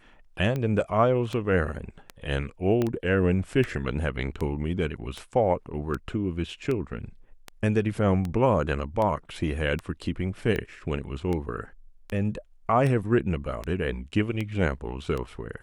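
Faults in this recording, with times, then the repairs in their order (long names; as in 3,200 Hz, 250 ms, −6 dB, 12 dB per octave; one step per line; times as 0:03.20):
scratch tick 78 rpm −18 dBFS
0:02.82: click −14 dBFS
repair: click removal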